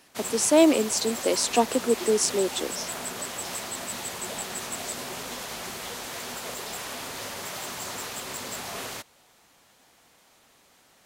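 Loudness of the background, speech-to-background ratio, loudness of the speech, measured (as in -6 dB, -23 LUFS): -33.0 LUFS, 9.5 dB, -23.5 LUFS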